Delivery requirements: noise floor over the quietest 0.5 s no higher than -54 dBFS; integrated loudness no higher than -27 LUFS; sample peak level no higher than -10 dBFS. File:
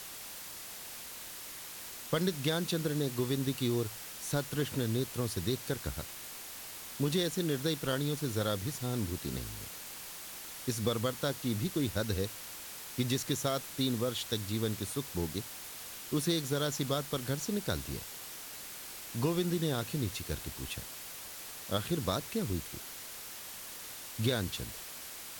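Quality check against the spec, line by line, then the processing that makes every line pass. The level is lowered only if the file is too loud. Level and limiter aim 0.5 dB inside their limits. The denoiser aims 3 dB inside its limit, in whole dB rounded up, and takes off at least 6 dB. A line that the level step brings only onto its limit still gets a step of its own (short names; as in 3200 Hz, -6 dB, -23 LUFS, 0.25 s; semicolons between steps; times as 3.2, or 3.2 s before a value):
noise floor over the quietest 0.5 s -45 dBFS: fail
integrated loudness -35.0 LUFS: OK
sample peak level -17.0 dBFS: OK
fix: denoiser 12 dB, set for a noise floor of -45 dBFS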